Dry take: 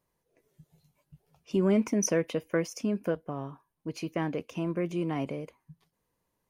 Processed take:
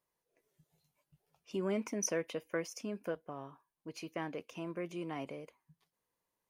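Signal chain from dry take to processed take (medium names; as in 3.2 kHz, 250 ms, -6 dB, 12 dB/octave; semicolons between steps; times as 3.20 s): bass shelf 290 Hz -11 dB; trim -5 dB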